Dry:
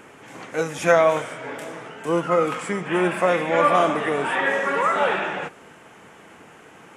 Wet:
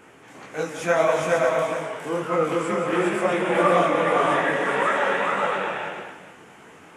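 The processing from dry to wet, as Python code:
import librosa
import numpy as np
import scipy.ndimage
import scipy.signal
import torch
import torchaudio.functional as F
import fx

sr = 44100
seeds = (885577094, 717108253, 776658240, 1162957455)

y = fx.echo_multitap(x, sr, ms=(175, 409, 536, 647, 842), db=(-9.0, -3.0, -4.5, -9.0, -13.5))
y = fx.detune_double(y, sr, cents=57)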